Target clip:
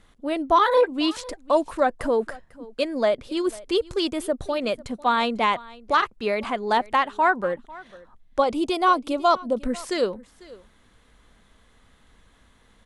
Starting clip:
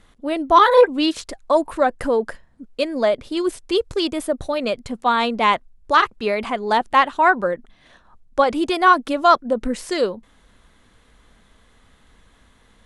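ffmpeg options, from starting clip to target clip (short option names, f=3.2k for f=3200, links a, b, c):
-filter_complex "[0:a]asettb=1/sr,asplit=3[a][b][c];[a]atrim=end=8.404[d];[b]atrim=start=8.4:end=9.57,asetpts=PTS-STARTPTS,afade=t=in:d=0.004:c=qsin,afade=t=out:st=1.166:d=0.004:c=qsin,equalizer=f=1.7k:t=o:w=0.55:g=-11.5[e];[c]atrim=start=9.566[f];[d][e]acrossfade=d=0.004:c1=hsin:c2=qsin[g];[g][f]acrossfade=d=0.004:c1=qsin:c2=hsin,alimiter=limit=-6dB:level=0:latency=1:release=349,aecho=1:1:497:0.0891,volume=-3dB"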